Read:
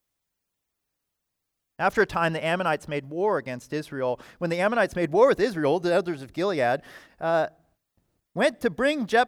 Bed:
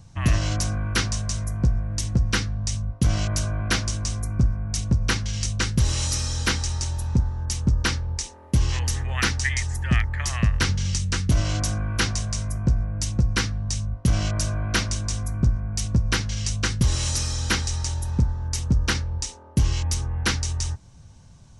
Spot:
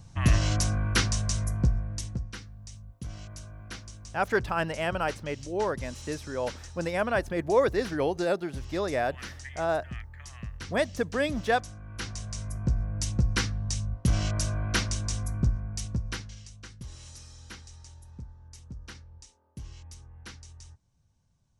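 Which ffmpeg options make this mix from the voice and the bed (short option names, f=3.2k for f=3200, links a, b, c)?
-filter_complex "[0:a]adelay=2350,volume=-4.5dB[a];[1:a]volume=13dB,afade=t=out:st=1.47:d=0.85:silence=0.141254,afade=t=in:st=11.81:d=1.17:silence=0.188365,afade=t=out:st=15.31:d=1.17:silence=0.125893[b];[a][b]amix=inputs=2:normalize=0"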